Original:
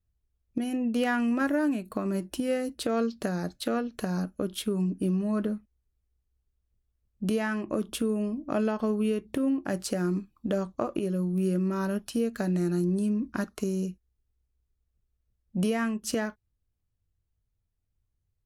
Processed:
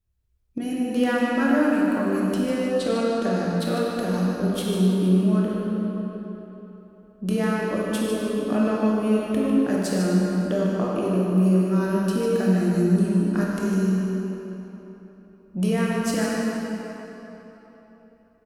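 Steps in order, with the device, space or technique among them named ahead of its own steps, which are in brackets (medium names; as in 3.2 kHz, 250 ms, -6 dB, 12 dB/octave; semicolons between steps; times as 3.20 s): 2.34–3.52 s: low-pass 8.5 kHz 12 dB/octave; cave (delay 150 ms -8.5 dB; reverberation RT60 3.8 s, pre-delay 18 ms, DRR -4 dB)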